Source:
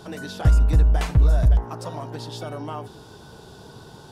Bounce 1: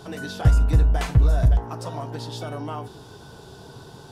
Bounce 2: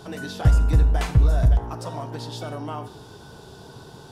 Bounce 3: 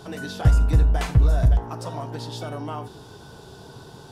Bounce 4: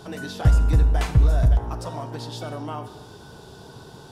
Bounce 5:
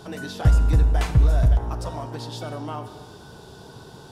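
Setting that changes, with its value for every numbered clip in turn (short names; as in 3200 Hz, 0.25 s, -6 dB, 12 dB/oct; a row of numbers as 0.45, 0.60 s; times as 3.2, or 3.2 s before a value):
non-linear reverb, gate: 80, 210, 120, 330, 510 ms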